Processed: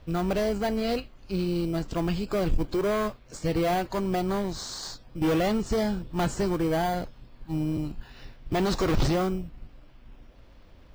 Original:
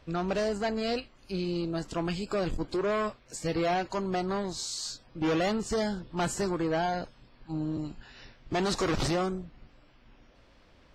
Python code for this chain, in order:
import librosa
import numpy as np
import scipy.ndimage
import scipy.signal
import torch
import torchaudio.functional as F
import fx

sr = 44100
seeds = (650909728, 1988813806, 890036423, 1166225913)

p1 = scipy.signal.sosfilt(scipy.signal.butter(2, 6800.0, 'lowpass', fs=sr, output='sos'), x)
p2 = fx.low_shelf(p1, sr, hz=110.0, db=8.5)
p3 = fx.sample_hold(p2, sr, seeds[0], rate_hz=2700.0, jitter_pct=0)
y = p2 + (p3 * 10.0 ** (-9.0 / 20.0))